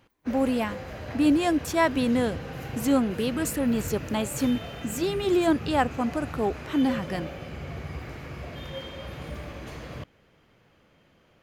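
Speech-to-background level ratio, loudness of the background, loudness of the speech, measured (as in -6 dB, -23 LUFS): 11.5 dB, -37.5 LUFS, -26.0 LUFS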